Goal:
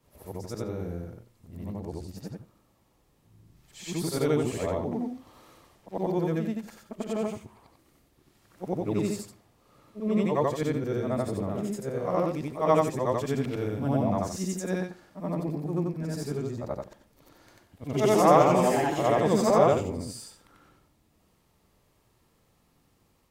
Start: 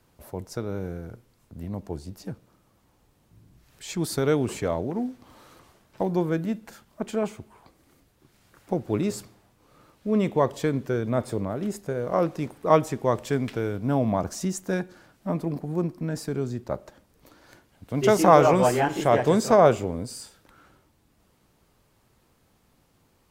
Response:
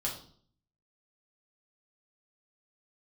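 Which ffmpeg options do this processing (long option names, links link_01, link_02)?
-af "afftfilt=real='re':imag='-im':win_size=8192:overlap=0.75,bandreject=frequency=1500:width=11,volume=2dB"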